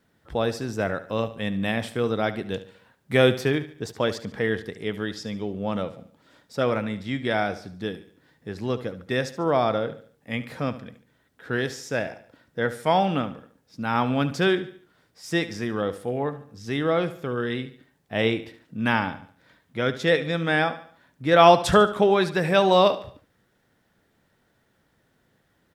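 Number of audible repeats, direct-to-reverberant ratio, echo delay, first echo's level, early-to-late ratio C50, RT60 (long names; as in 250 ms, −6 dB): 3, no reverb audible, 72 ms, −14.5 dB, no reverb audible, no reverb audible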